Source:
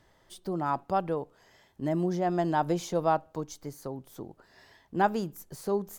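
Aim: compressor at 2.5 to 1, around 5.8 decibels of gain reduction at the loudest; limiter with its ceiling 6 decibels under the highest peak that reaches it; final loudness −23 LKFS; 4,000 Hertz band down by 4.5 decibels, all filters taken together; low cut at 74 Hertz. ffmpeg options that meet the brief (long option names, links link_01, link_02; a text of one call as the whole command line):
ffmpeg -i in.wav -af "highpass=74,equalizer=frequency=4000:width_type=o:gain=-6,acompressor=threshold=-28dB:ratio=2.5,volume=13dB,alimiter=limit=-10.5dB:level=0:latency=1" out.wav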